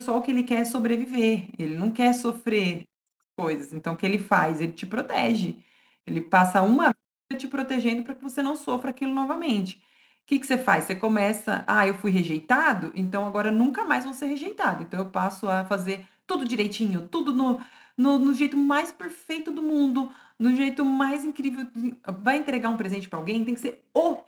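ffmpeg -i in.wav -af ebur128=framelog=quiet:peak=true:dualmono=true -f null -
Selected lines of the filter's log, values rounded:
Integrated loudness:
  I:         -22.4 LUFS
  Threshold: -32.6 LUFS
Loudness range:
  LRA:         3.6 LU
  Threshold: -42.6 LUFS
  LRA low:   -24.5 LUFS
  LRA high:  -20.9 LUFS
True peak:
  Peak:       -5.4 dBFS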